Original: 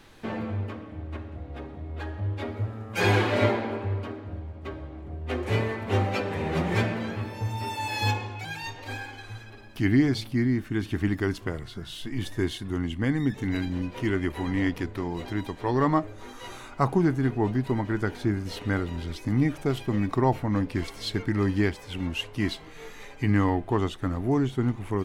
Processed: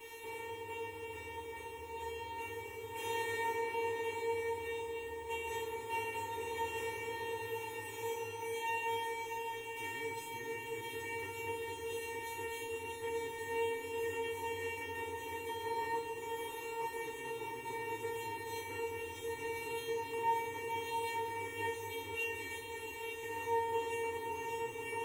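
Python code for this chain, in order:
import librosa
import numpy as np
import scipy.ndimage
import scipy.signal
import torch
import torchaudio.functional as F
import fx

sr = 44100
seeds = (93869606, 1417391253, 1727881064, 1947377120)

p1 = fx.bin_compress(x, sr, power=0.4)
p2 = fx.fixed_phaser(p1, sr, hz=950.0, stages=8)
p3 = fx.quant_dither(p2, sr, seeds[0], bits=10, dither='triangular')
p4 = scipy.signal.sosfilt(scipy.signal.butter(2, 44.0, 'highpass', fs=sr, output='sos'), p3)
p5 = fx.high_shelf(p4, sr, hz=4500.0, db=10.5)
p6 = fx.comb_fb(p5, sr, f0_hz=460.0, decay_s=0.64, harmonics='all', damping=0.0, mix_pct=100)
p7 = p6 + fx.echo_opening(p6, sr, ms=224, hz=200, octaves=2, feedback_pct=70, wet_db=0, dry=0)
y = p7 * 10.0 ** (2.5 / 20.0)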